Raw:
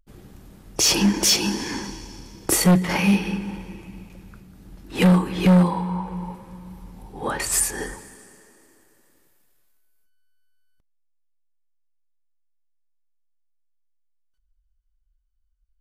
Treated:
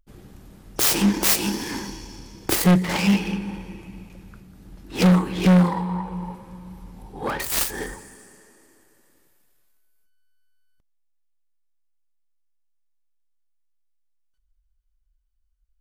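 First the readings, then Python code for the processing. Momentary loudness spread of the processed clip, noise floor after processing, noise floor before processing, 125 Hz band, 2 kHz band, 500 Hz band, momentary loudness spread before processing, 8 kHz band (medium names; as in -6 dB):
18 LU, -67 dBFS, -67 dBFS, 0.0 dB, -0.5 dB, -1.0 dB, 18 LU, -4.0 dB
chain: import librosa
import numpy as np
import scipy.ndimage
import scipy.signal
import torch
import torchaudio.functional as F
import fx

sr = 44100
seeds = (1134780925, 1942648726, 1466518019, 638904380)

y = fx.self_delay(x, sr, depth_ms=0.16)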